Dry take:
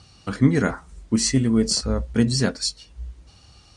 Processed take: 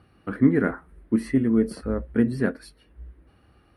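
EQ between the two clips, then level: FFT filter 130 Hz 0 dB, 320 Hz +10 dB, 910 Hz +1 dB, 1.7 kHz +7 dB, 7.2 kHz -28 dB, 11 kHz +7 dB; -7.5 dB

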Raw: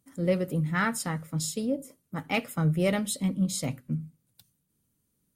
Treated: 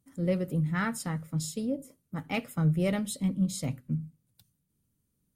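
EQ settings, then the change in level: bass shelf 200 Hz +8 dB; -5.0 dB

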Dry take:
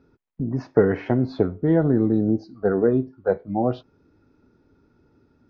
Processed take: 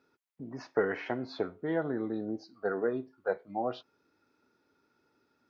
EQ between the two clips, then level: high-pass 1.5 kHz 6 dB/octave; 0.0 dB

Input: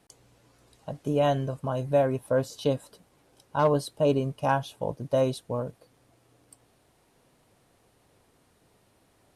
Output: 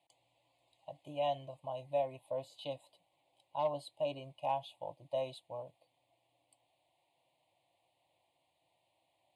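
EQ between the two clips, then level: band-pass 250–6100 Hz; static phaser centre 540 Hz, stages 4; static phaser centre 1.6 kHz, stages 6; -4.0 dB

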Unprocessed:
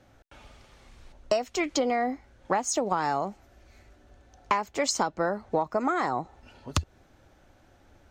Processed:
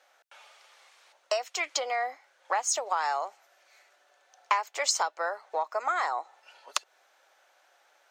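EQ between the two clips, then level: Bessel high-pass 860 Hz, order 6; +2.0 dB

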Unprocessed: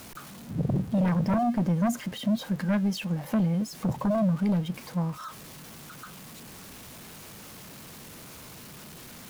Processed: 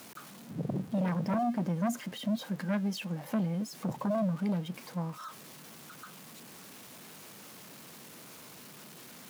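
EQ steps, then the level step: high-pass 170 Hz 12 dB/octave; -4.0 dB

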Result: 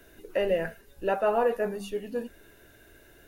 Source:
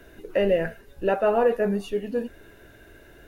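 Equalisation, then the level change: hum notches 50/100/150/200 Hz; dynamic bell 980 Hz, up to +5 dB, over -35 dBFS, Q 1.2; treble shelf 4.2 kHz +9 dB; -6.0 dB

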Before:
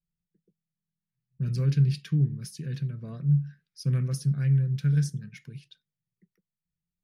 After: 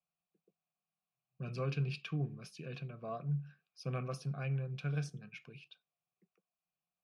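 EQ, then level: vowel filter a; +15.5 dB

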